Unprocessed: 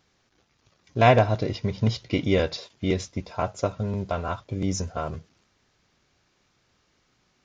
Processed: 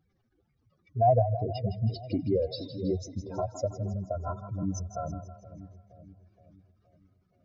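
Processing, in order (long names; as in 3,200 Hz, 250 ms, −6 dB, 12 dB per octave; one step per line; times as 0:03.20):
expanding power law on the bin magnitudes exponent 3
echo with a time of its own for lows and highs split 560 Hz, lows 471 ms, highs 161 ms, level −11 dB
level −4.5 dB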